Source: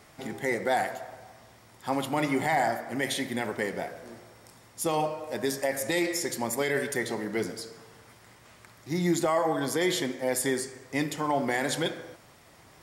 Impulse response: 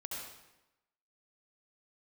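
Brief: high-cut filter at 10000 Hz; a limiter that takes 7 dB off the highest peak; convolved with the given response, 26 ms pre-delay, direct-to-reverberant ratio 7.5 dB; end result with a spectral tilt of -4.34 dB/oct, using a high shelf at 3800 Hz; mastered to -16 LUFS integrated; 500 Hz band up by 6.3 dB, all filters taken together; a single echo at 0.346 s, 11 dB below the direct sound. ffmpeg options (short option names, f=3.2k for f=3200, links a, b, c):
-filter_complex "[0:a]lowpass=10k,equalizer=f=500:t=o:g=8,highshelf=f=3.8k:g=-6,alimiter=limit=-17.5dB:level=0:latency=1,aecho=1:1:346:0.282,asplit=2[a][b];[1:a]atrim=start_sample=2205,adelay=26[c];[b][c]afir=irnorm=-1:irlink=0,volume=-7.5dB[d];[a][d]amix=inputs=2:normalize=0,volume=11.5dB"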